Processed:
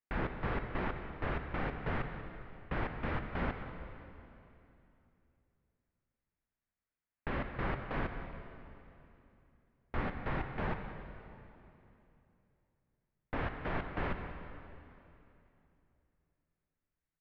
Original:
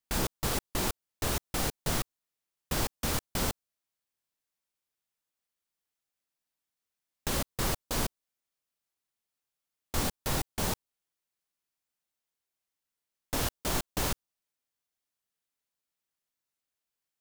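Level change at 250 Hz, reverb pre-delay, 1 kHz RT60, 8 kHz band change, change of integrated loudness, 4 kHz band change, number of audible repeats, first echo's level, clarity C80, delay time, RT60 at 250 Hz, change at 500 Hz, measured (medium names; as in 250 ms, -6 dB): -3.0 dB, 25 ms, 2.8 s, under -40 dB, -7.0 dB, -17.5 dB, 1, -15.0 dB, 7.0 dB, 189 ms, 3.3 s, -3.0 dB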